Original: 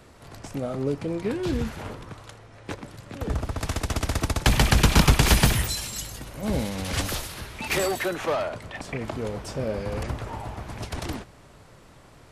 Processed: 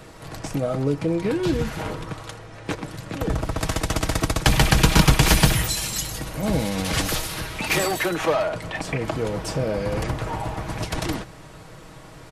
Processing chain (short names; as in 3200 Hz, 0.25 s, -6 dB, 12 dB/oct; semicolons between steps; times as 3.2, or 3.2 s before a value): comb 6.3 ms, depth 45%; in parallel at +2 dB: compressor, threshold -31 dBFS, peak gain reduction 18.5 dB